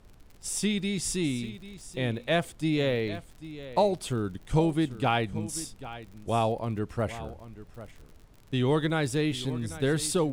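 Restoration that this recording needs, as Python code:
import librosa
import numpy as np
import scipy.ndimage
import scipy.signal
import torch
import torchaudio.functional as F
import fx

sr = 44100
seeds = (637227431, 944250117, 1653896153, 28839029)

y = fx.fix_declick_ar(x, sr, threshold=6.5)
y = fx.noise_reduce(y, sr, print_start_s=8.02, print_end_s=8.52, reduce_db=23.0)
y = fx.fix_echo_inverse(y, sr, delay_ms=791, level_db=-15.0)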